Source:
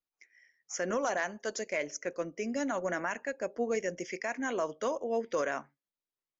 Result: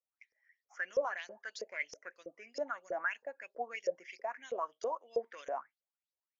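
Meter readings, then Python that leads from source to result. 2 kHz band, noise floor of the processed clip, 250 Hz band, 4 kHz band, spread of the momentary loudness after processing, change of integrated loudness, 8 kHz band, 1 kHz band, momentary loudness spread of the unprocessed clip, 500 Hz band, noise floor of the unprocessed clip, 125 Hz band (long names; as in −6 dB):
−3.5 dB, below −85 dBFS, −19.5 dB, −6.0 dB, 10 LU, −5.5 dB, can't be measured, −3.5 dB, 5 LU, −6.0 dB, below −85 dBFS, below −20 dB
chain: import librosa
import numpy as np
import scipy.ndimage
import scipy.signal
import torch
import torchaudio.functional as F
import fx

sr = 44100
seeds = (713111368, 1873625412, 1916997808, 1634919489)

y = fx.filter_lfo_bandpass(x, sr, shape='saw_up', hz=3.1, low_hz=460.0, high_hz=5400.0, q=7.7)
y = y * 10.0 ** (6.5 / 20.0)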